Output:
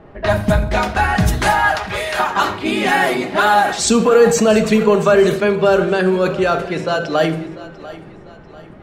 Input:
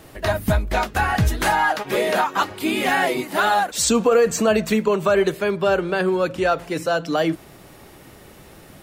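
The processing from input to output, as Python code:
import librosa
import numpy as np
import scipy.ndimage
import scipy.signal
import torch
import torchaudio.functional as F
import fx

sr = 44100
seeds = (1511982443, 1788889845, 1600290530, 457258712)

y = fx.env_lowpass(x, sr, base_hz=1300.0, full_db=-15.0)
y = fx.highpass(y, sr, hz=fx.line((1.51, 460.0), (2.18, 1100.0)), slope=12, at=(1.51, 2.18), fade=0.02)
y = fx.echo_feedback(y, sr, ms=693, feedback_pct=41, wet_db=-17.5)
y = fx.room_shoebox(y, sr, seeds[0], volume_m3=2000.0, walls='furnished', distance_m=1.3)
y = fx.sustainer(y, sr, db_per_s=93.0)
y = F.gain(torch.from_numpy(y), 3.0).numpy()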